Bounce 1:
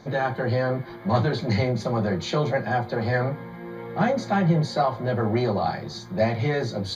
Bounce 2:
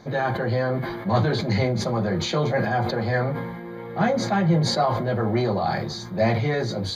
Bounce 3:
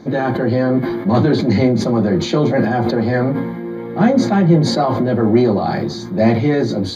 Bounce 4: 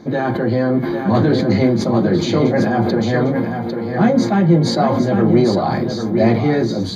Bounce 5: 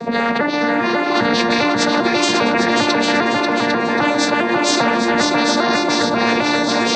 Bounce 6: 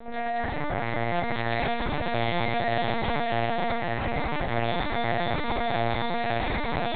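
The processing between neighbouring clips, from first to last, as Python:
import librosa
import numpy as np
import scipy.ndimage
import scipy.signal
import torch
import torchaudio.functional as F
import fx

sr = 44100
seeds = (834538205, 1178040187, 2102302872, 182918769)

y1 = fx.sustainer(x, sr, db_per_s=38.0)
y2 = np.clip(y1, -10.0 ** (-10.0 / 20.0), 10.0 ** (-10.0 / 20.0))
y2 = fx.peak_eq(y2, sr, hz=280.0, db=14.0, octaves=1.0)
y2 = y2 * librosa.db_to_amplitude(2.5)
y3 = y2 + 10.0 ** (-6.5 / 20.0) * np.pad(y2, (int(801 * sr / 1000.0), 0))[:len(y2)]
y3 = y3 * librosa.db_to_amplitude(-1.0)
y4 = fx.vocoder_arp(y3, sr, chord='major triad', root=58, every_ms=400)
y4 = fx.echo_feedback(y4, sr, ms=540, feedback_pct=41, wet_db=-6.5)
y4 = fx.spectral_comp(y4, sr, ratio=4.0)
y5 = fx.comb_fb(y4, sr, f0_hz=140.0, decay_s=0.92, harmonics='odd', damping=0.0, mix_pct=70)
y5 = fx.rev_freeverb(y5, sr, rt60_s=2.5, hf_ratio=0.9, predelay_ms=75, drr_db=-1.5)
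y5 = fx.lpc_vocoder(y5, sr, seeds[0], excitation='pitch_kept', order=8)
y5 = y5 * librosa.db_to_amplitude(-4.5)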